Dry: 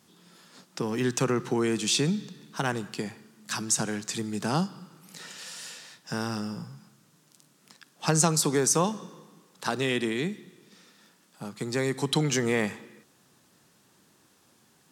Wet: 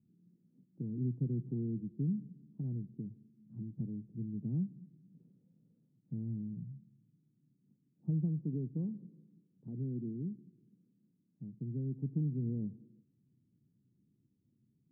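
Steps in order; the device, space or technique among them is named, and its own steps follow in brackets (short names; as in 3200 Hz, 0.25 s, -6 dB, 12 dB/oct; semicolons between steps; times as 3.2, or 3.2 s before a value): the neighbour's flat through the wall (LPF 270 Hz 24 dB/oct; bell 120 Hz +7 dB 0.42 oct); gain -7 dB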